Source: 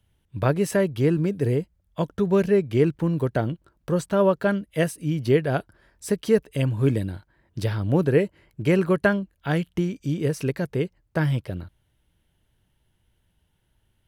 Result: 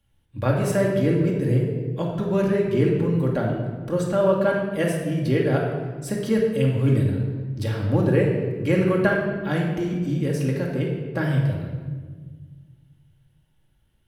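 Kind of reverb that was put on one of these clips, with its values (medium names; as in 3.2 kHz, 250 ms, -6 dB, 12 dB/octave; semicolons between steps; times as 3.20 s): simulated room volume 1500 m³, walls mixed, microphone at 2.3 m; trim -3.5 dB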